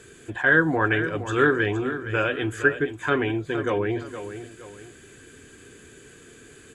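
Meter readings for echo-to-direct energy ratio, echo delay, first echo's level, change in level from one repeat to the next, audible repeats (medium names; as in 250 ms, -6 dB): -10.5 dB, 466 ms, -11.0 dB, -8.0 dB, 2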